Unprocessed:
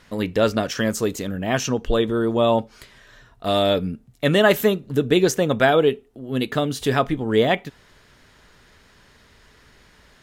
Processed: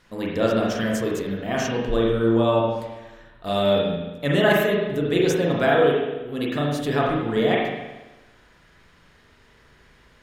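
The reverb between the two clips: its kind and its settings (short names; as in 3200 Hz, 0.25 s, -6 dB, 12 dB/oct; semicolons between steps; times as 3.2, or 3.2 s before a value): spring tank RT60 1.1 s, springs 35/41 ms, chirp 75 ms, DRR -3.5 dB; gain -6.5 dB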